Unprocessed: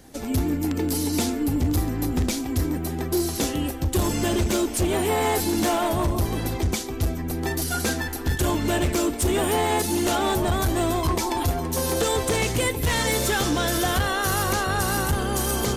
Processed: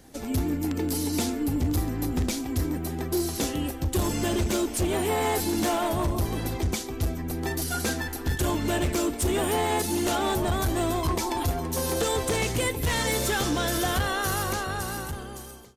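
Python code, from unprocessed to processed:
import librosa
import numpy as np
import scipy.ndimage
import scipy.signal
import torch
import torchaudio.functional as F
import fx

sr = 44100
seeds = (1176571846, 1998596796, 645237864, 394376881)

y = fx.fade_out_tail(x, sr, length_s=1.59)
y = F.gain(torch.from_numpy(y), -3.0).numpy()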